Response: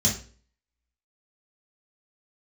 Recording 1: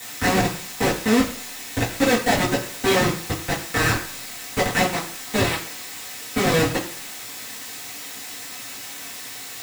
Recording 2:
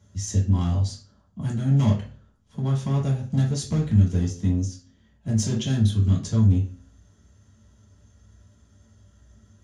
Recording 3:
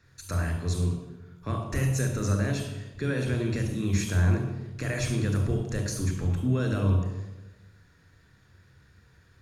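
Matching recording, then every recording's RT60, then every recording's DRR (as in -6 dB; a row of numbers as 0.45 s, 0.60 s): 2; 0.55 s, 0.40 s, 1.1 s; -9.5 dB, -5.5 dB, 4.0 dB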